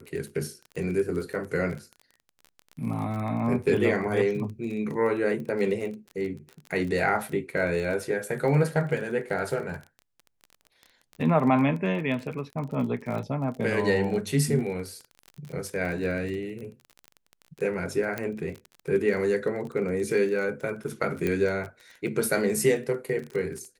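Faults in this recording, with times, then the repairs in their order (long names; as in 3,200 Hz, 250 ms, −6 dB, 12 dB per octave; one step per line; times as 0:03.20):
surface crackle 28 per second −33 dBFS
0:18.18: click −16 dBFS
0:21.27: click −15 dBFS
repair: click removal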